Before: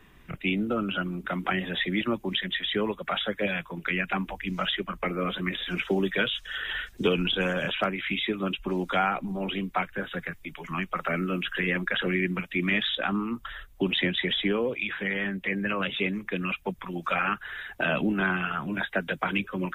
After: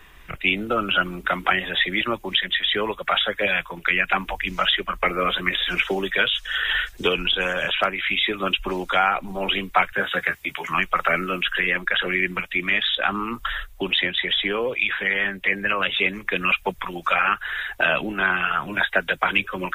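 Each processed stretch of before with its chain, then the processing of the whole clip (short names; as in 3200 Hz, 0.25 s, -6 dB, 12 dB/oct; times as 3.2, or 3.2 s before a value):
9.92–10.75 HPF 86 Hz + doubler 15 ms -9 dB
whole clip: bell 200 Hz -13.5 dB 2.1 oct; vocal rider within 4 dB 0.5 s; gain +9 dB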